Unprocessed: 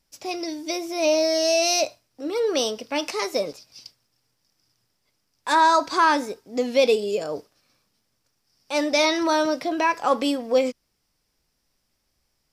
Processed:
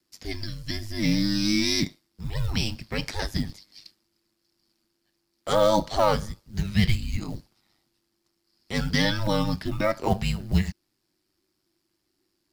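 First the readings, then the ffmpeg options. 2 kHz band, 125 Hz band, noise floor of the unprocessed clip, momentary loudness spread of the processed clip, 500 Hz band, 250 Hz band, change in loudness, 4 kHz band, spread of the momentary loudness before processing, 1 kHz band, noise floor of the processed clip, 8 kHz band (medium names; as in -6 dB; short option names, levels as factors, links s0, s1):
-5.0 dB, no reading, -73 dBFS, 13 LU, -6.5 dB, +0.5 dB, -3.5 dB, -2.5 dB, 11 LU, -8.5 dB, -76 dBFS, -7.5 dB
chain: -af "aeval=exprs='val(0)*sin(2*PI*50*n/s)':c=same,acrusher=bits=7:mode=log:mix=0:aa=0.000001,afreqshift=-390"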